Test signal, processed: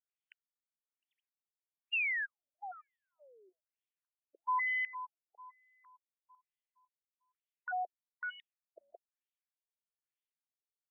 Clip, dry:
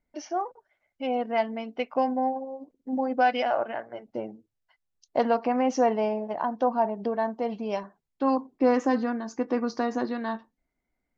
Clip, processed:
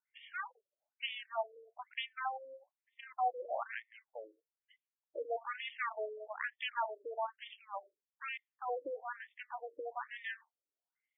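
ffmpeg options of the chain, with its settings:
-af "aeval=exprs='0.282*(cos(1*acos(clip(val(0)/0.282,-1,1)))-cos(1*PI/2))+0.0447*(cos(6*acos(clip(val(0)/0.282,-1,1)))-cos(6*PI/2))+0.00355*(cos(7*acos(clip(val(0)/0.282,-1,1)))-cos(7*PI/2))':c=same,aderivative,afftfilt=real='re*between(b*sr/1024,410*pow(2600/410,0.5+0.5*sin(2*PI*1.1*pts/sr))/1.41,410*pow(2600/410,0.5+0.5*sin(2*PI*1.1*pts/sr))*1.41)':imag='im*between(b*sr/1024,410*pow(2600/410,0.5+0.5*sin(2*PI*1.1*pts/sr))/1.41,410*pow(2600/410,0.5+0.5*sin(2*PI*1.1*pts/sr))*1.41)':win_size=1024:overlap=0.75,volume=10dB"

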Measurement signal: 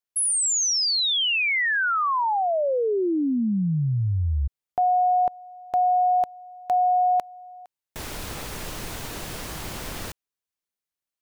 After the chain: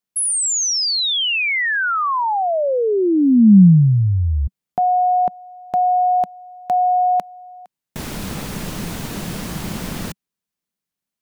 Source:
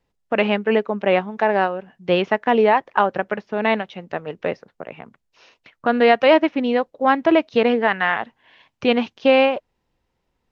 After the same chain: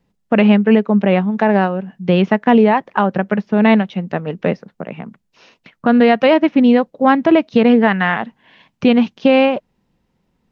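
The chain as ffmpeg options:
-af "equalizer=f=190:t=o:w=1:g=13,alimiter=limit=-6.5dB:level=0:latency=1:release=208,volume=3.5dB"

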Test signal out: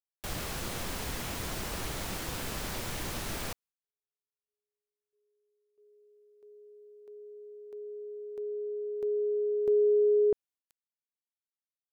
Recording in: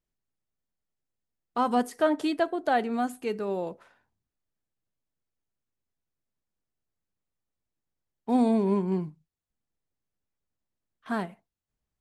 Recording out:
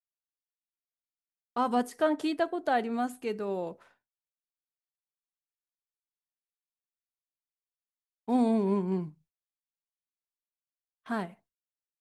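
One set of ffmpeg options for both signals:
-af "agate=range=-33dB:threshold=-55dB:ratio=3:detection=peak,volume=-2.5dB"

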